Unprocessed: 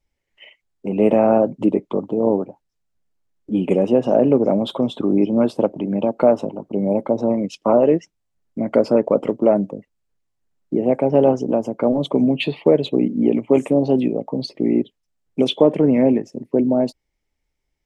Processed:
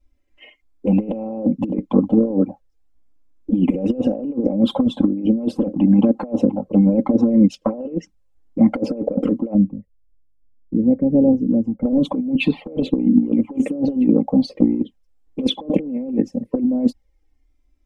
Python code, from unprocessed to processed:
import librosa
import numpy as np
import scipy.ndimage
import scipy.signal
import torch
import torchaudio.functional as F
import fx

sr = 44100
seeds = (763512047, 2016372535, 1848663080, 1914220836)

y = fx.env_flanger(x, sr, rest_ms=3.0, full_db=-11.5)
y = fx.curve_eq(y, sr, hz=(120.0, 910.0, 1300.0, 1900.0, 2900.0), db=(0, -20, -27, -18, -27), at=(9.53, 11.85), fade=0.02)
y = fx.over_compress(y, sr, threshold_db=-23.0, ratio=-0.5)
y = fx.tilt_shelf(y, sr, db=6.0, hz=720.0)
y = y + 0.8 * np.pad(y, (int(3.8 * sr / 1000.0), 0))[:len(y)]